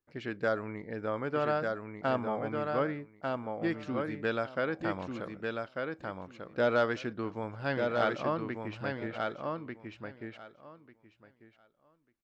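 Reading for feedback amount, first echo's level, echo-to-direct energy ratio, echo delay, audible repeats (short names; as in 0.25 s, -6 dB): 16%, -4.0 dB, -4.0 dB, 1.194 s, 2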